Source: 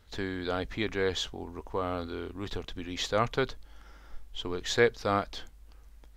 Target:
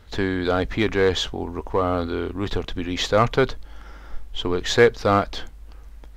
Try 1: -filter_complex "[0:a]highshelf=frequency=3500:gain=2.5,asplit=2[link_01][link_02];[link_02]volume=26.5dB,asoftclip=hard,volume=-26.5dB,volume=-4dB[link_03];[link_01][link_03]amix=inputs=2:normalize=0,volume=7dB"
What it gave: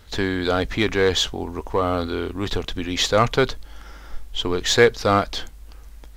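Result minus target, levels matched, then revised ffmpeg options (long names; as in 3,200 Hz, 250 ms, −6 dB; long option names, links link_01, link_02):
8,000 Hz band +6.0 dB
-filter_complex "[0:a]highshelf=frequency=3500:gain=-6.5,asplit=2[link_01][link_02];[link_02]volume=26.5dB,asoftclip=hard,volume=-26.5dB,volume=-4dB[link_03];[link_01][link_03]amix=inputs=2:normalize=0,volume=7dB"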